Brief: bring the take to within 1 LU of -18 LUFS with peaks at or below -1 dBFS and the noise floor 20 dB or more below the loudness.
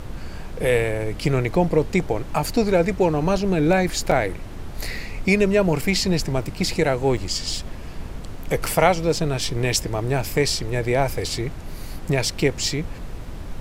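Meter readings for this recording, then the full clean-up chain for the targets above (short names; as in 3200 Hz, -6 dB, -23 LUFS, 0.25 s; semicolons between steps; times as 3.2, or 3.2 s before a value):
dropouts 3; longest dropout 4.9 ms; noise floor -34 dBFS; noise floor target -42 dBFS; loudness -22.0 LUFS; peak -2.0 dBFS; loudness target -18.0 LUFS
-> interpolate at 4.11/7.17/8.66, 4.9 ms; noise print and reduce 8 dB; gain +4 dB; limiter -1 dBFS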